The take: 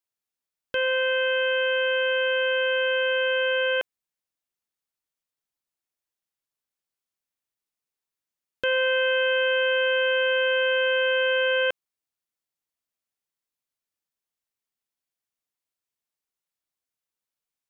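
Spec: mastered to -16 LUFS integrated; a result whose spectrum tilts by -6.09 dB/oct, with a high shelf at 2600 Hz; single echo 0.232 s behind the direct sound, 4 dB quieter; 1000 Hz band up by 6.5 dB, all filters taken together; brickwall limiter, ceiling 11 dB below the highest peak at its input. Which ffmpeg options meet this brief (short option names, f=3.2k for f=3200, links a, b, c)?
-af "equalizer=f=1k:t=o:g=7.5,highshelf=f=2.6k:g=-6.5,alimiter=level_in=2.5dB:limit=-24dB:level=0:latency=1,volume=-2.5dB,aecho=1:1:232:0.631,volume=16.5dB"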